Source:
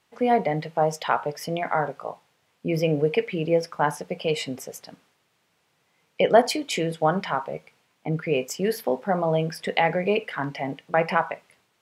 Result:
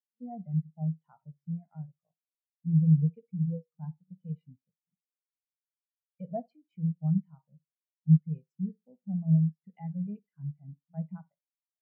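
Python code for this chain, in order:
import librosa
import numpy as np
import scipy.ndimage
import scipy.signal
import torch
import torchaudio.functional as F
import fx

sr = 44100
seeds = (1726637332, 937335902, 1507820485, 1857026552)

y = fx.low_shelf_res(x, sr, hz=240.0, db=13.0, q=1.5)
y = fx.echo_tape(y, sr, ms=61, feedback_pct=40, wet_db=-11.5, lp_hz=1900.0, drive_db=7.0, wow_cents=35)
y = fx.spectral_expand(y, sr, expansion=2.5)
y = y * 10.0 ** (-6.5 / 20.0)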